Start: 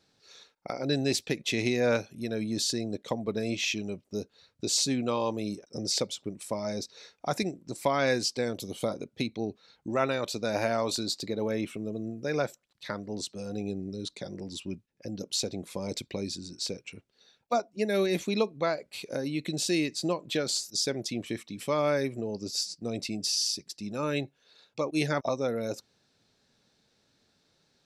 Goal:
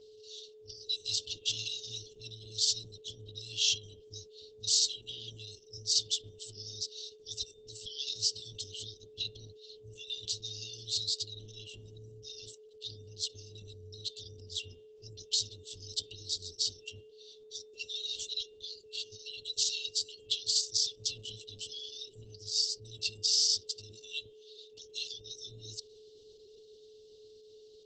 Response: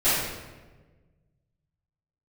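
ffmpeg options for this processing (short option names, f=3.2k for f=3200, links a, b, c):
-filter_complex "[0:a]lowpass=5.8k,bandreject=f=400.7:t=h:w=4,bandreject=f=801.4:t=h:w=4,bandreject=f=1.2021k:t=h:w=4,bandreject=f=1.6028k:t=h:w=4,bandreject=f=2.0035k:t=h:w=4,bandreject=f=2.4042k:t=h:w=4,bandreject=f=2.8049k:t=h:w=4,bandreject=f=3.2056k:t=h:w=4,bandreject=f=3.6063k:t=h:w=4,afftfilt=real='re*(1-between(b*sr/4096,110,2700))':imag='im*(1-between(b*sr/4096,110,2700))':win_size=4096:overlap=0.75,acrossover=split=440|1500[a][b][c];[a]acompressor=threshold=-55dB:ratio=8[d];[c]alimiter=level_in=1dB:limit=-24dB:level=0:latency=1:release=46,volume=-1dB[e];[d][b][e]amix=inputs=3:normalize=0,aeval=exprs='val(0)+0.00126*sin(2*PI*430*n/s)':c=same,volume=6dB" -ar 48000 -c:a libopus -b:a 10k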